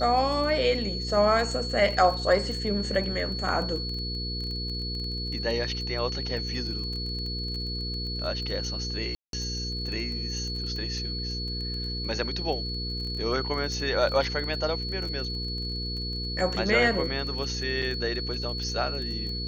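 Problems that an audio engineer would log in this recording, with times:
crackle 18/s -33 dBFS
hum 60 Hz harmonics 8 -34 dBFS
tone 4400 Hz -33 dBFS
9.15–9.33 gap 0.182 s
14.09 gap 2.5 ms
17.82 gap 4.5 ms

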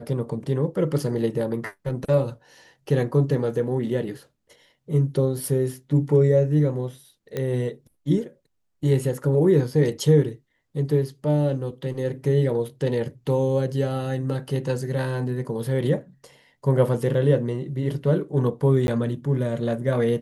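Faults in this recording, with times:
7.37 pop -15 dBFS
18.87–18.88 gap 11 ms

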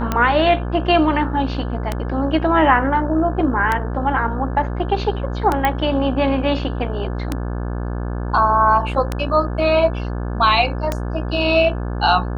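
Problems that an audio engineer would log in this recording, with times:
buzz 60 Hz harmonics 29 -24 dBFS
tick 33 1/3 rpm -6 dBFS
5.65 pop -5 dBFS

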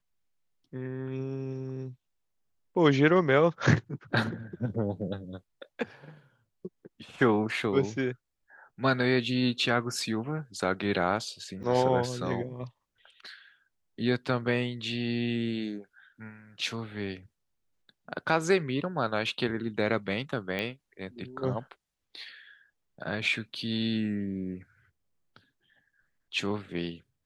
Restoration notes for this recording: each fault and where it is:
11.63–11.64 gap 6.9 ms
20.59 pop -19 dBFS

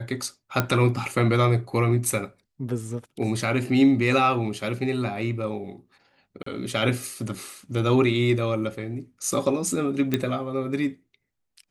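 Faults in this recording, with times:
0.6 pop -7 dBFS
6.43–6.46 gap 34 ms
10.14 pop -9 dBFS

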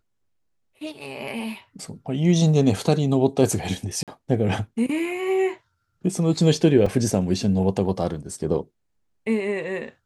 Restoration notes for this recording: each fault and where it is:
4.03–4.08 gap 47 ms
6.86 gap 3.9 ms

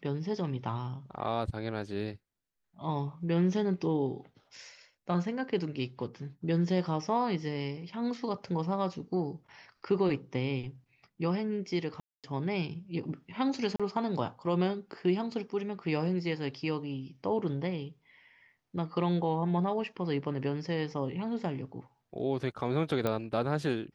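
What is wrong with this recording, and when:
12–12.24 gap 0.237 s
13.76–13.8 gap 36 ms
23.07 pop -17 dBFS

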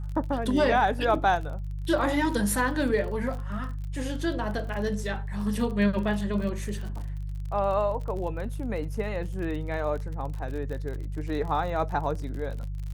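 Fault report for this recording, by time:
crackle 43/s -35 dBFS
hum 50 Hz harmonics 3 -33 dBFS

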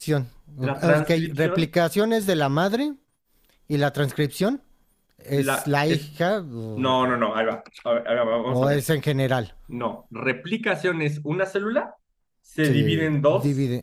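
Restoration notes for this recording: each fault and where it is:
5.57 gap 4.1 ms

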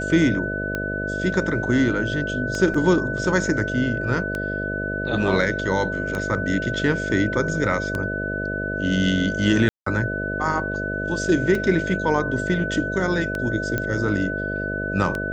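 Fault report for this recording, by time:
buzz 50 Hz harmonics 13 -29 dBFS
tick 33 1/3 rpm -13 dBFS
tone 1500 Hz -27 dBFS
2.74 gap 4.4 ms
9.69–9.86 gap 0.174 s
13.78 pop -11 dBFS

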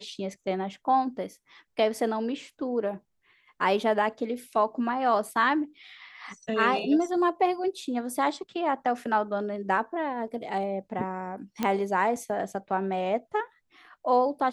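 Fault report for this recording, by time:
11.63 pop -13 dBFS

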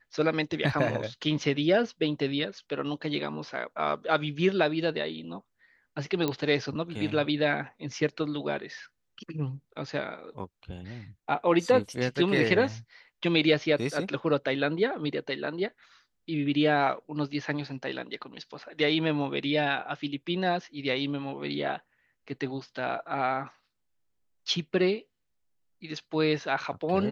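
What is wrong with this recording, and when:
6.28 pop -14 dBFS

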